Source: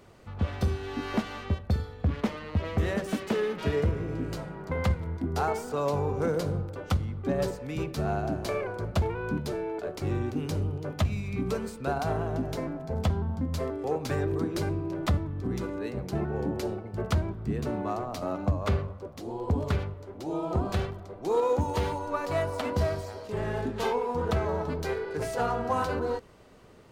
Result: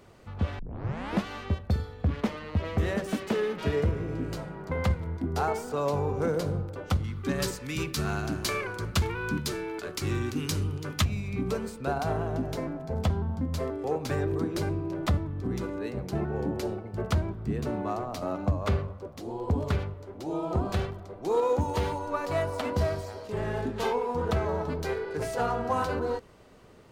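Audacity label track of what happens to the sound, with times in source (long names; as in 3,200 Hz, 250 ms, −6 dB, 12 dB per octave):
0.590000	0.590000	tape start 0.66 s
7.040000	11.050000	drawn EQ curve 350 Hz 0 dB, 670 Hz −9 dB, 1,100 Hz +4 dB, 6,200 Hz +11 dB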